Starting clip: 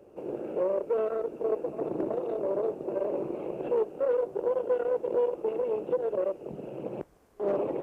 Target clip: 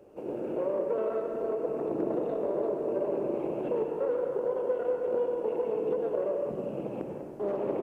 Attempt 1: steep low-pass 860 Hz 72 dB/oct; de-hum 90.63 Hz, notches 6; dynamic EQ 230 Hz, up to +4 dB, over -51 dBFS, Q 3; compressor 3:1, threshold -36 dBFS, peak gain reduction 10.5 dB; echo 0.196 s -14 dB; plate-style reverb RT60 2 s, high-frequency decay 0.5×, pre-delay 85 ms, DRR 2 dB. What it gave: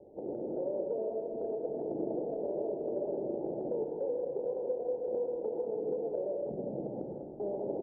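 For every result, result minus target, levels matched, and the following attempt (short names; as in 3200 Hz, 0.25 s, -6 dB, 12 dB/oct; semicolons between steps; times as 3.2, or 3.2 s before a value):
compressor: peak gain reduction +5 dB; 1000 Hz band -2.5 dB
steep low-pass 860 Hz 72 dB/oct; de-hum 90.63 Hz, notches 6; dynamic EQ 230 Hz, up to +4 dB, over -51 dBFS, Q 3; compressor 3:1, threshold -28.5 dBFS, peak gain reduction 5.5 dB; echo 0.196 s -14 dB; plate-style reverb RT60 2 s, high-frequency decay 0.5×, pre-delay 85 ms, DRR 2 dB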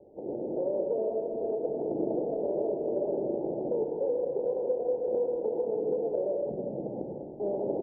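1000 Hz band -3.0 dB
de-hum 90.63 Hz, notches 6; dynamic EQ 230 Hz, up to +4 dB, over -51 dBFS, Q 3; compressor 3:1, threshold -28.5 dBFS, peak gain reduction 5.5 dB; echo 0.196 s -14 dB; plate-style reverb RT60 2 s, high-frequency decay 0.5×, pre-delay 85 ms, DRR 2 dB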